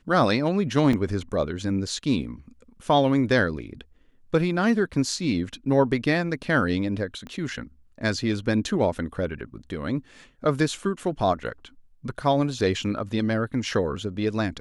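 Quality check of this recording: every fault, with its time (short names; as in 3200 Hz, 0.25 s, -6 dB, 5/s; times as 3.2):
0.93 gap 3.3 ms
7.27 pop -25 dBFS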